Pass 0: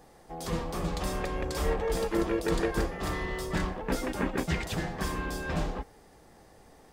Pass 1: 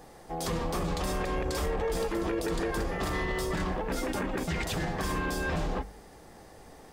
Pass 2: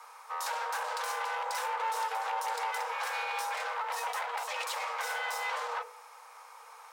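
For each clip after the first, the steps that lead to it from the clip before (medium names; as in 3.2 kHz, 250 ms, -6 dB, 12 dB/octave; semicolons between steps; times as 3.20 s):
de-hum 49.79 Hz, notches 5; peak limiter -27.5 dBFS, peak gain reduction 11.5 dB; trim +5 dB
resonant low shelf 310 Hz -10 dB, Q 1.5; one-sided clip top -36.5 dBFS; frequency shift +440 Hz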